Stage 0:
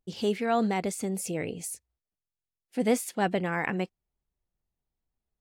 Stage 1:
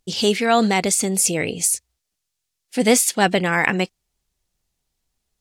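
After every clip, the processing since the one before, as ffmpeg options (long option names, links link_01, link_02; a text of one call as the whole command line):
ffmpeg -i in.wav -af "equalizer=frequency=6200:width=0.37:gain=11.5,volume=8dB" out.wav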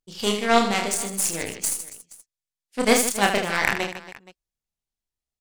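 ffmpeg -i in.wav -filter_complex "[0:a]aeval=exprs='0.891*(cos(1*acos(clip(val(0)/0.891,-1,1)))-cos(1*PI/2))+0.0501*(cos(4*acos(clip(val(0)/0.891,-1,1)))-cos(4*PI/2))+0.0316*(cos(5*acos(clip(val(0)/0.891,-1,1)))-cos(5*PI/2))+0.126*(cos(7*acos(clip(val(0)/0.891,-1,1)))-cos(7*PI/2))':channel_layout=same,asplit=2[link_01][link_02];[link_02]aecho=0:1:30|78|154.8|277.7|474.3:0.631|0.398|0.251|0.158|0.1[link_03];[link_01][link_03]amix=inputs=2:normalize=0,volume=-3dB" out.wav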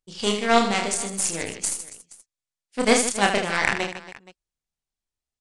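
ffmpeg -i in.wav -af "aresample=22050,aresample=44100" out.wav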